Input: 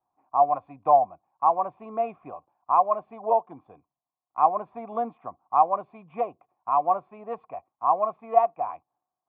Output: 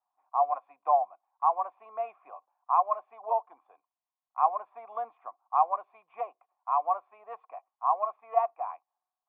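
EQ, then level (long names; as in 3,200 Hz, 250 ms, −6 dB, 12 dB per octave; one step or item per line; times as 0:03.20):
high-pass filter 730 Hz 12 dB per octave
resonant band-pass 1,100 Hz, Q 0.56
−2.0 dB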